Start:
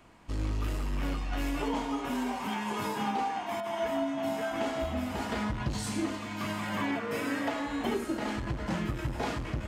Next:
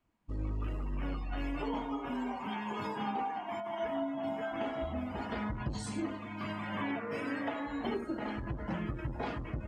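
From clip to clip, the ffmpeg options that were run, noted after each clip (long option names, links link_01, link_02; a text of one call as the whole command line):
ffmpeg -i in.wav -af "afftdn=noise_reduction=20:noise_floor=-43,volume=-4dB" out.wav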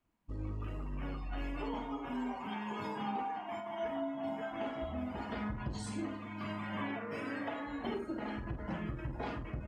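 ffmpeg -i in.wav -filter_complex "[0:a]asplit=2[link_01][link_02];[link_02]adelay=48,volume=-10dB[link_03];[link_01][link_03]amix=inputs=2:normalize=0,volume=-3dB" out.wav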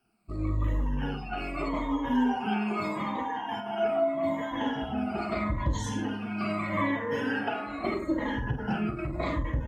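ffmpeg -i in.wav -af "afftfilt=real='re*pow(10,17/40*sin(2*PI*(1.1*log(max(b,1)*sr/1024/100)/log(2)-(-0.8)*(pts-256)/sr)))':imag='im*pow(10,17/40*sin(2*PI*(1.1*log(max(b,1)*sr/1024/100)/log(2)-(-0.8)*(pts-256)/sr)))':win_size=1024:overlap=0.75,volume=6.5dB" out.wav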